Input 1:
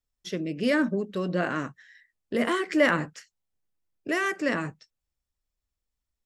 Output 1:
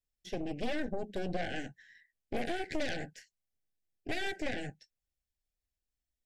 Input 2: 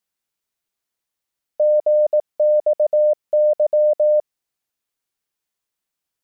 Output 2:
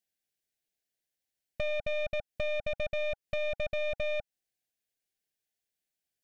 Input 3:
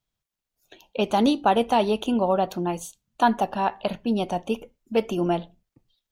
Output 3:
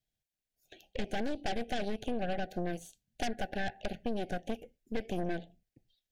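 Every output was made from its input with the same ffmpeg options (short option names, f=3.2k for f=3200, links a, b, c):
-filter_complex "[0:a]acrossover=split=2800[a][b];[b]acompressor=threshold=-43dB:ratio=4:attack=1:release=60[c];[a][c]amix=inputs=2:normalize=0,aeval=exprs='0.422*(cos(1*acos(clip(val(0)/0.422,-1,1)))-cos(1*PI/2))+0.0376*(cos(5*acos(clip(val(0)/0.422,-1,1)))-cos(5*PI/2))+0.15*(cos(8*acos(clip(val(0)/0.422,-1,1)))-cos(8*PI/2))':c=same,acompressor=threshold=-18dB:ratio=8,asuperstop=centerf=1100:order=20:qfactor=1.7,asoftclip=type=tanh:threshold=-15dB,volume=-8.5dB"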